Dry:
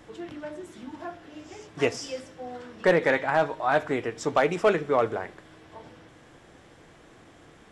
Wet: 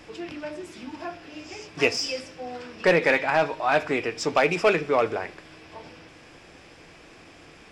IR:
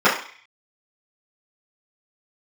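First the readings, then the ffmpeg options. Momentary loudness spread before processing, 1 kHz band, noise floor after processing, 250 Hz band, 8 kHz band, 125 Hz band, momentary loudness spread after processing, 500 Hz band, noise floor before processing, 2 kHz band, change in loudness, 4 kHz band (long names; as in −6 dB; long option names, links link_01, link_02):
18 LU, +1.0 dB, −50 dBFS, +1.0 dB, +4.5 dB, 0.0 dB, 18 LU, +1.0 dB, −54 dBFS, +4.0 dB, +2.0 dB, +7.5 dB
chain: -filter_complex "[0:a]equalizer=frequency=125:width_type=o:width=0.33:gain=-6,equalizer=frequency=200:width_type=o:width=0.33:gain=-4,equalizer=frequency=2500:width_type=o:width=0.33:gain=11,equalizer=frequency=5000:width_type=o:width=0.33:gain=11,asplit=2[link_01][link_02];[link_02]asoftclip=type=tanh:threshold=-27.5dB,volume=-9dB[link_03];[link_01][link_03]amix=inputs=2:normalize=0,equalizer=frequency=170:width=3.8:gain=2.5"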